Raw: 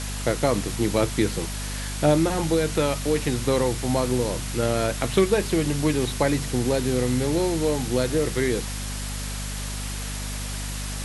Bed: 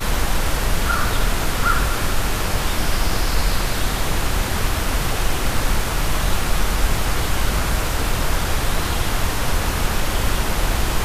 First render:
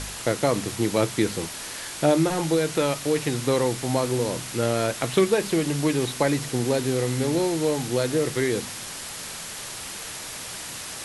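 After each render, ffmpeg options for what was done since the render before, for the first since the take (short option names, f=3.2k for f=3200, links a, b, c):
-af "bandreject=f=50:t=h:w=4,bandreject=f=100:t=h:w=4,bandreject=f=150:t=h:w=4,bandreject=f=200:t=h:w=4,bandreject=f=250:t=h:w=4"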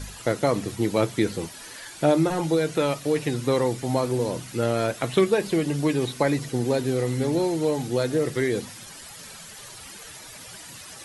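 -af "afftdn=nr=11:nf=-36"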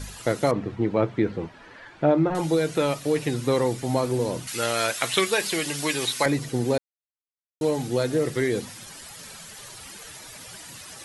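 -filter_complex "[0:a]asettb=1/sr,asplit=3[a][b][c];[a]atrim=end=0.514[d];[b]atrim=start=0.51:end=2.35,asetpts=PTS-STARTPTS,afade=t=in:d=0.004:c=qsin,afade=t=out:st=1.836:d=0.004:c=qsin,lowpass=1.9k[e];[c]atrim=start=2.346[f];[d][e]acrossfade=d=0.004:c1=hsin:c2=qsin[g];[g][f]acrossfade=d=0.004:c1=qsin:c2=hsin,asettb=1/sr,asplit=3[h][i][j];[h]atrim=end=4.474[k];[i]atrim=start=4.47:end=6.26,asetpts=PTS-STARTPTS,afade=t=in:d=0.004:c=qsin,afade=t=out:st=1.786:d=0.004:c=qsin,tiltshelf=f=770:g=-10[l];[j]atrim=start=6.256[m];[k][l]acrossfade=d=0.004:c1=hsin:c2=qsin[n];[n][m]acrossfade=d=0.004:c1=qsin:c2=hsin,asplit=3[o][p][q];[o]atrim=end=6.78,asetpts=PTS-STARTPTS,afade=t=out:st=6.776:d=0.004:c=hsin[r];[p]atrim=start=6.78:end=7.61,asetpts=PTS-STARTPTS,volume=0[s];[q]atrim=start=7.61,asetpts=PTS-STARTPTS,afade=t=in:d=0.004:c=hsin[t];[r][s][t]concat=n=3:v=0:a=1"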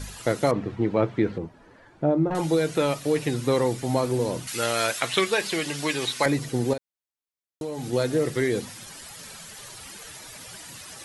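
-filter_complex "[0:a]asettb=1/sr,asplit=3[a][b][c];[a]atrim=end=1.384[d];[b]atrim=start=1.38:end=2.31,asetpts=PTS-STARTPTS,afade=t=in:d=0.004:c=qsin,afade=t=out:st=0.926:d=0.004:c=qsin,equalizer=f=2.8k:w=0.38:g=-12.5[e];[c]atrim=start=2.306[f];[d][e]acrossfade=d=0.004:c1=hsin:c2=qsin[g];[g][f]acrossfade=d=0.004:c1=qsin:c2=hsin,asettb=1/sr,asplit=3[h][i][j];[h]atrim=end=5.004[k];[i]atrim=start=5:end=6.23,asetpts=PTS-STARTPTS,afade=t=in:d=0.004:c=qsin,afade=t=out:st=1.226:d=0.004:c=qsin,highshelf=f=8.6k:g=-10[l];[j]atrim=start=6.226[m];[k][l]acrossfade=d=0.004:c1=hsin:c2=qsin[n];[n][m]acrossfade=d=0.004:c1=qsin:c2=hsin,asettb=1/sr,asplit=3[o][p][q];[o]atrim=end=6.734[r];[p]atrim=start=6.73:end=7.93,asetpts=PTS-STARTPTS,afade=t=in:d=0.004:c=qsin,afade=t=out:st=1.196:d=0.004:c=qsin,acompressor=threshold=-28dB:ratio=5:attack=3.2:release=140:knee=1:detection=peak[s];[q]atrim=start=7.926[t];[r][s]acrossfade=d=0.004:c1=hsin:c2=qsin[u];[u][t]acrossfade=d=0.004:c1=qsin:c2=hsin"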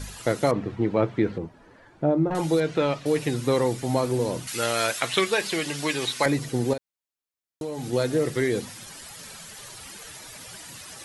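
-filter_complex "[0:a]asettb=1/sr,asplit=3[a][b][c];[a]atrim=end=2.604[d];[b]atrim=start=2.6:end=3.06,asetpts=PTS-STARTPTS,afade=t=in:d=0.004:c=qsin,afade=t=out:st=0.456:d=0.004:c=qsin,lowpass=4.2k[e];[c]atrim=start=3.056[f];[d][e]acrossfade=d=0.004:c1=hsin:c2=qsin[g];[g][f]acrossfade=d=0.004:c1=qsin:c2=hsin"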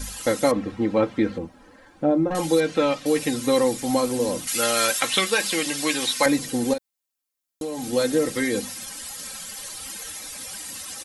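-af "highshelf=f=4.8k:g=8,aecho=1:1:3.8:0.69"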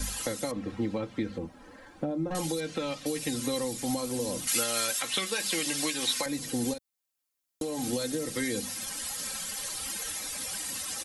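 -filter_complex "[0:a]alimiter=limit=-15dB:level=0:latency=1:release=483,acrossover=split=180|3000[a][b][c];[b]acompressor=threshold=-31dB:ratio=6[d];[a][d][c]amix=inputs=3:normalize=0"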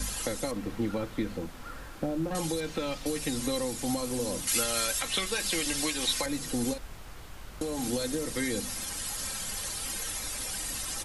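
-filter_complex "[1:a]volume=-25.5dB[a];[0:a][a]amix=inputs=2:normalize=0"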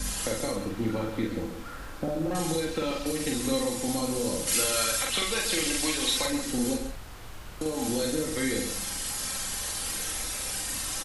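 -filter_complex "[0:a]asplit=2[a][b];[b]adelay=45,volume=-2dB[c];[a][c]amix=inputs=2:normalize=0,asplit=2[d][e];[e]adelay=134.1,volume=-8dB,highshelf=f=4k:g=-3.02[f];[d][f]amix=inputs=2:normalize=0"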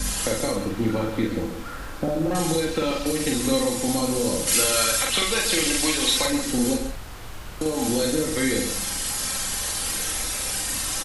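-af "volume=5.5dB"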